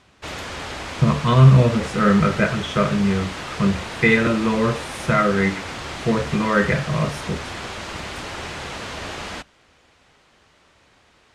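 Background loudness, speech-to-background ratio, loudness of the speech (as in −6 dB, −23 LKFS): −31.0 LKFS, 12.0 dB, −19.0 LKFS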